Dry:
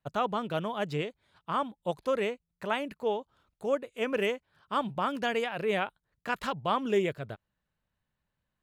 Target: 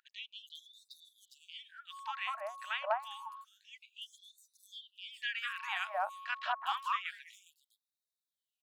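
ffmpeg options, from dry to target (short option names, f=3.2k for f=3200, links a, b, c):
-filter_complex "[0:a]bandreject=f=2.1k:w=16,acrossover=split=4200[a][b];[b]alimiter=level_in=22.5dB:limit=-24dB:level=0:latency=1:release=460,volume=-22.5dB[c];[a][c]amix=inputs=2:normalize=0,acrossover=split=1400|5300[d][e][f];[d]adelay=200[g];[f]adelay=410[h];[g][e][h]amix=inputs=3:normalize=0,aeval=exprs='val(0)+0.00447*sin(2*PI*1100*n/s)':c=same,afftfilt=real='re*gte(b*sr/1024,530*pow(3600/530,0.5+0.5*sin(2*PI*0.28*pts/sr)))':imag='im*gte(b*sr/1024,530*pow(3600/530,0.5+0.5*sin(2*PI*0.28*pts/sr)))':win_size=1024:overlap=0.75,volume=1dB"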